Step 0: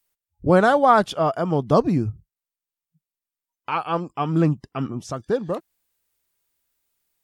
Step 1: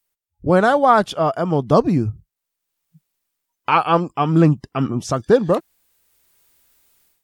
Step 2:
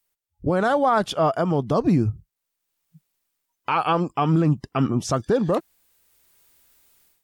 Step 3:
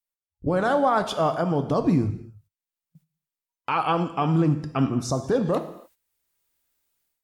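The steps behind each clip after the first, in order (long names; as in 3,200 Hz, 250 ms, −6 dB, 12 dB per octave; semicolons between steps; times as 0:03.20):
automatic gain control gain up to 16 dB; level −1 dB
brickwall limiter −11 dBFS, peak gain reduction 9 dB
healed spectral selection 0:04.94–0:05.16, 1,200–3,500 Hz; reverb whose tail is shaped and stops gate 310 ms falling, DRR 8 dB; noise gate −54 dBFS, range −13 dB; level −2.5 dB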